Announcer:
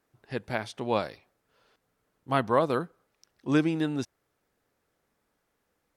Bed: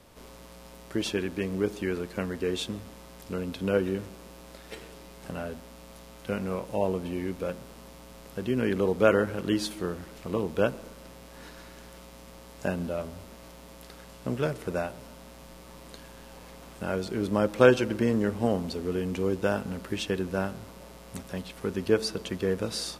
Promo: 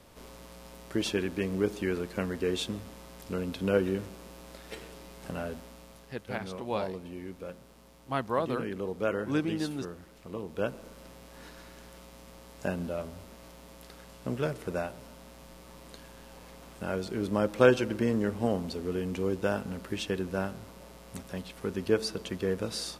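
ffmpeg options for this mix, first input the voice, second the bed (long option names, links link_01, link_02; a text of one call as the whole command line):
ffmpeg -i stem1.wav -i stem2.wav -filter_complex "[0:a]adelay=5800,volume=-5.5dB[link_01];[1:a]volume=6dB,afade=type=out:start_time=5.6:duration=0.59:silence=0.375837,afade=type=in:start_time=10.46:duration=0.52:silence=0.473151[link_02];[link_01][link_02]amix=inputs=2:normalize=0" out.wav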